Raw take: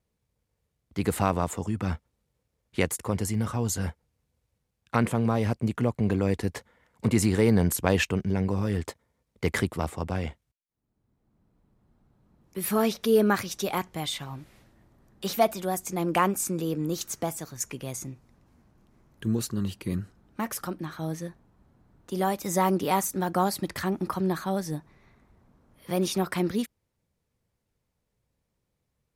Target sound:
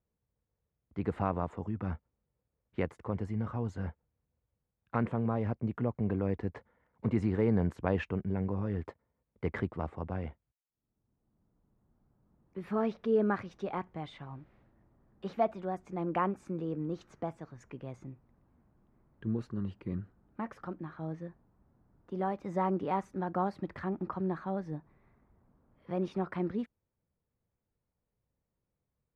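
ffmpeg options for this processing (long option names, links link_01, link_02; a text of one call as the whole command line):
ffmpeg -i in.wav -af "lowpass=1600,volume=-6.5dB" out.wav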